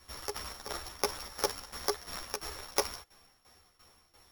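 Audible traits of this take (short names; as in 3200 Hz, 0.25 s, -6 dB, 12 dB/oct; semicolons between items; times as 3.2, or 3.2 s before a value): a buzz of ramps at a fixed pitch in blocks of 8 samples; tremolo saw down 2.9 Hz, depth 85%; a shimmering, thickened sound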